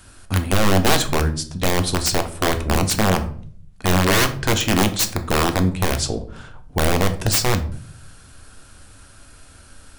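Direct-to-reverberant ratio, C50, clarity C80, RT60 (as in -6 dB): 7.0 dB, 13.5 dB, 18.0 dB, 0.55 s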